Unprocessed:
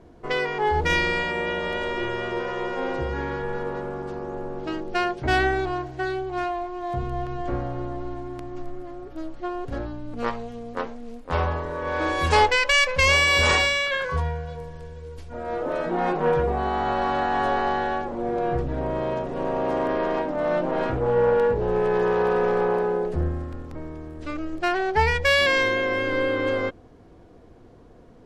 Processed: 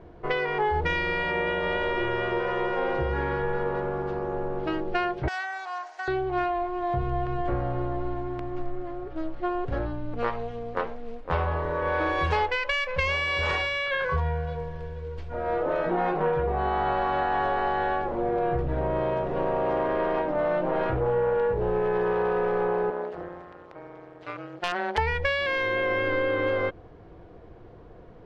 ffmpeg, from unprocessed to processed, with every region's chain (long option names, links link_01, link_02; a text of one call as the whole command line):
ffmpeg -i in.wav -filter_complex "[0:a]asettb=1/sr,asplit=3[link_01][link_02][link_03];[link_01]atrim=end=5.284[link_04];[link_02]atrim=start=5.28:end=6.08,asetpts=PTS-STARTPTS,afade=type=in:duration=0.004:curve=qsin,afade=type=out:start_time=0.796:duration=0.004:curve=qsin,highshelf=frequency=4600:width_type=q:width=1.5:gain=11.5,acompressor=threshold=-26dB:ratio=6:attack=3.2:release=140:knee=1:detection=peak,highpass=frequency=780:width=0.5412,highpass=frequency=780:width=1.3066[link_05];[link_03]atrim=start=6.076[link_06];[link_04][link_05]acrossfade=duration=0.004:curve1=hsin:curve2=qsin[link_07];[link_07][link_06]acrossfade=duration=0.004:curve1=qsin:curve2=hsin,asettb=1/sr,asplit=3[link_08][link_09][link_10];[link_08]atrim=end=22.904[link_11];[link_09]atrim=start=22.9:end=24.98,asetpts=PTS-STARTPTS,afade=type=in:duration=0.004:curve=qsin,afade=type=out:start_time=2.076:duration=0.004:curve=qsin,highpass=450,aeval=exprs='(mod(7.08*val(0)+1,2)-1)/7.08':channel_layout=same,tremolo=f=180:d=0.889[link_12];[link_10]atrim=start=24.976[link_13];[link_11][link_12]acrossfade=duration=0.004:curve1=hsin:curve2=qsin[link_14];[link_14][link_13]acrossfade=duration=0.004:curve1=qsin:curve2=hsin,equalizer=frequency=250:width=5.2:gain=-11.5,acompressor=threshold=-25dB:ratio=6,lowpass=3100,volume=3dB" out.wav